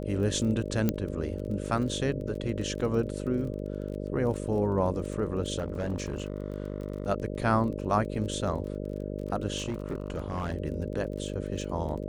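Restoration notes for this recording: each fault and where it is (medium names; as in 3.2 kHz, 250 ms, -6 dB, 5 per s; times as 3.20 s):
buzz 50 Hz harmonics 12 -35 dBFS
crackle 26 per s -37 dBFS
0.89 s: pop -12 dBFS
5.58–7.09 s: clipped -26 dBFS
9.57–10.54 s: clipped -27.5 dBFS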